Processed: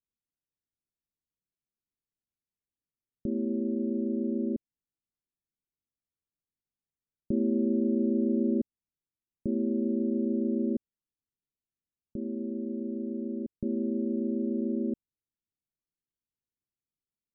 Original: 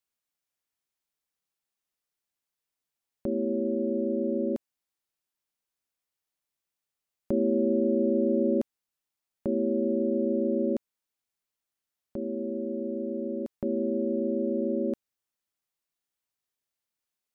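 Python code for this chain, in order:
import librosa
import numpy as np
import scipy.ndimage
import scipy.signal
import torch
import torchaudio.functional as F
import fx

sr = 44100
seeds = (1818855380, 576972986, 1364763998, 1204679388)

y = scipy.ndimage.gaussian_filter1d(x, 23.0, mode='constant')
y = y * librosa.db_to_amplitude(3.0)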